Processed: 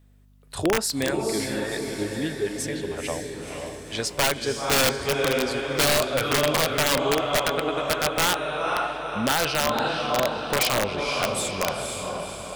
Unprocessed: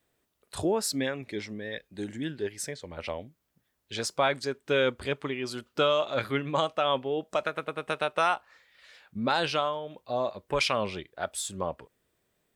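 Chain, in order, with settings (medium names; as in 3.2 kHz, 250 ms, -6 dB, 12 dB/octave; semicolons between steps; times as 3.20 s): hum 50 Hz, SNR 29 dB; echo that smears into a reverb 506 ms, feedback 55%, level -3.5 dB; on a send at -15.5 dB: reverberation RT60 0.35 s, pre-delay 3 ms; on the sum: integer overflow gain 18 dB; trim +4 dB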